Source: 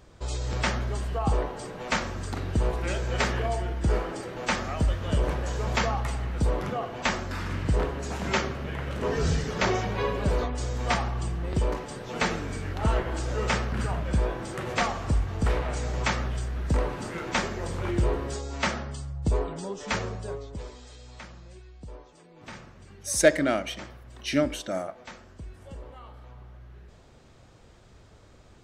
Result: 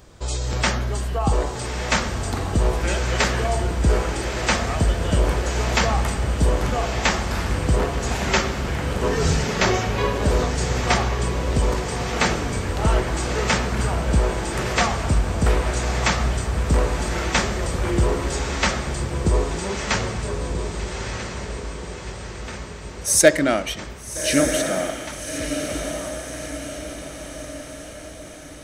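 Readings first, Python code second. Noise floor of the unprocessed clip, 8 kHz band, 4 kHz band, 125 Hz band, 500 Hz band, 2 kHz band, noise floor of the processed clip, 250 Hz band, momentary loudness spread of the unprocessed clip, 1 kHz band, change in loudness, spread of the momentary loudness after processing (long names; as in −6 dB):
−53 dBFS, +11.5 dB, +8.5 dB, +6.5 dB, +6.0 dB, +7.0 dB, −36 dBFS, +6.5 dB, 18 LU, +6.5 dB, +6.5 dB, 12 LU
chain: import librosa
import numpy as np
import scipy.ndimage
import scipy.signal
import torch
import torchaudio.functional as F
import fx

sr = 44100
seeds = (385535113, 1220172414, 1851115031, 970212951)

y = fx.high_shelf(x, sr, hz=6200.0, db=8.5)
y = fx.echo_diffused(y, sr, ms=1246, feedback_pct=54, wet_db=-6)
y = F.gain(torch.from_numpy(y), 5.0).numpy()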